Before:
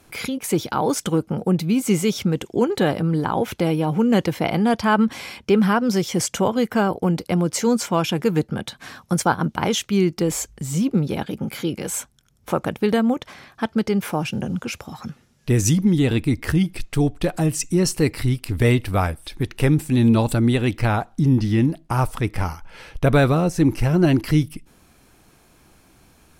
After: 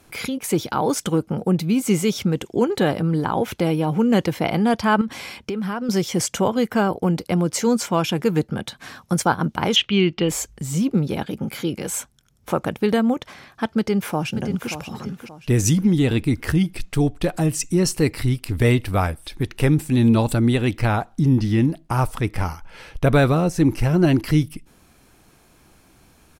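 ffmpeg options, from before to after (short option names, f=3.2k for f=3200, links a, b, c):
-filter_complex "[0:a]asettb=1/sr,asplit=3[a][b][c];[a]atrim=end=5.014[d];[b]atrim=start=5.01:end=5.89,asetpts=PTS-STARTPTS,afade=t=in:d=0.004:c=qsin,afade=t=out:st=0.876:d=0.004:c=qsin,acompressor=threshold=-23dB:ratio=6:attack=3.2:release=140:knee=1:detection=peak[e];[c]atrim=start=5.886[f];[d][e]acrossfade=d=0.004:c1=hsin:c2=qsin[g];[g][f]acrossfade=d=0.004:c1=qsin:c2=hsin,asettb=1/sr,asplit=3[h][i][j];[h]atrim=end=9.764[k];[i]atrim=start=9.76:end=10.29,asetpts=PTS-STARTPTS,afade=t=in:d=0.004:c=qsin,afade=t=out:st=0.526:d=0.004:c=qsin,lowpass=f=3k:t=q:w=4.4[l];[j]atrim=start=10.286[m];[k][l]acrossfade=d=0.004:c1=hsin:c2=qsin[n];[n][m]acrossfade=d=0.004:c1=qsin:c2=hsin,asplit=2[o][p];[p]afade=t=in:st=13.78:d=0.01,afade=t=out:st=14.7:d=0.01,aecho=0:1:580|1160|1740|2320:0.316228|0.11068|0.0387379|0.0135583[q];[o][q]amix=inputs=2:normalize=0"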